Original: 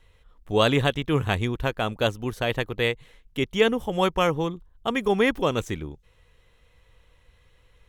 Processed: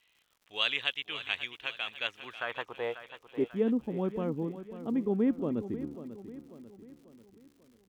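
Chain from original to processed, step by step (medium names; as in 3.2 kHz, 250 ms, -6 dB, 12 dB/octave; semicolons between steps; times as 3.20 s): band-pass sweep 2.8 kHz -> 250 Hz, 1.92–3.65 s; crackle 160 per s -53 dBFS; feedback delay 542 ms, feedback 47%, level -12.5 dB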